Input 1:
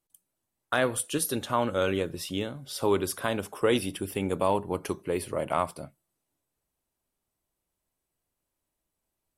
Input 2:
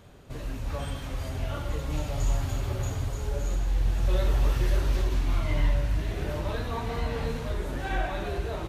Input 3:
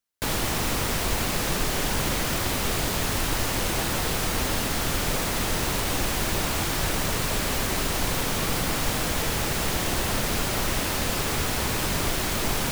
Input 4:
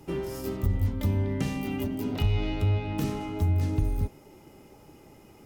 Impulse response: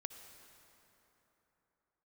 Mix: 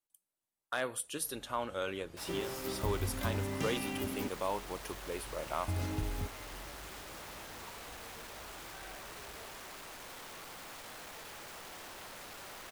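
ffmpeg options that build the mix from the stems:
-filter_complex "[0:a]volume=-7.5dB[link_01];[1:a]adelay=900,volume=-19dB[link_02];[2:a]equalizer=frequency=850:width=0.33:gain=7.5,asoftclip=type=hard:threshold=-27.5dB,adelay=1950,volume=-17.5dB[link_03];[3:a]adelay=2200,volume=-2dB,asplit=3[link_04][link_05][link_06];[link_04]atrim=end=4.28,asetpts=PTS-STARTPTS,afade=type=out:start_time=4.276:duration=0.004:curve=hsin[link_07];[link_05]atrim=start=4.28:end=5.68,asetpts=PTS-STARTPTS,volume=0[link_08];[link_06]atrim=start=5.68,asetpts=PTS-STARTPTS,afade=type=in:duration=0.004:curve=hsin[link_09];[link_07][link_08][link_09]concat=n=3:v=0:a=1[link_10];[link_01][link_02][link_03][link_10]amix=inputs=4:normalize=0,lowshelf=frequency=370:gain=-9.5,asoftclip=type=hard:threshold=-23dB"

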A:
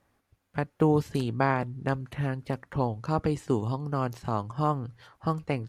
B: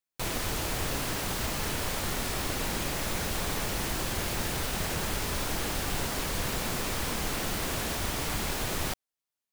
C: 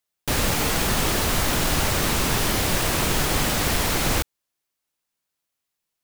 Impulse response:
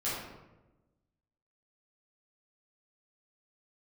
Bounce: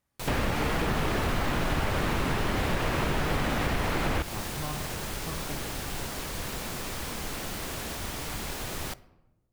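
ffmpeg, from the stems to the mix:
-filter_complex "[0:a]bass=frequency=250:gain=4,treble=frequency=4000:gain=11,volume=-16.5dB,asplit=2[link_01][link_02];[link_02]volume=-7.5dB[link_03];[1:a]volume=-4dB,asplit=2[link_04][link_05];[link_05]volume=-23.5dB[link_06];[2:a]lowpass=2500,volume=1dB[link_07];[3:a]atrim=start_sample=2205[link_08];[link_03][link_06]amix=inputs=2:normalize=0[link_09];[link_09][link_08]afir=irnorm=-1:irlink=0[link_10];[link_01][link_04][link_07][link_10]amix=inputs=4:normalize=0,acompressor=threshold=-25dB:ratio=3"

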